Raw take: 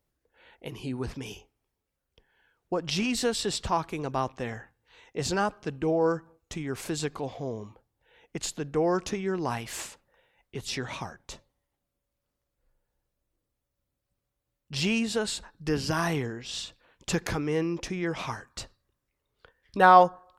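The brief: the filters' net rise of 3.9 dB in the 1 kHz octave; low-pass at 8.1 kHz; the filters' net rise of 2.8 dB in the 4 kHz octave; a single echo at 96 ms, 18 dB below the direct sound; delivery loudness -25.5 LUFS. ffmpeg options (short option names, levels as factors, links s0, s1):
-af "lowpass=8100,equalizer=f=1000:t=o:g=5,equalizer=f=4000:t=o:g=3.5,aecho=1:1:96:0.126,volume=1.06"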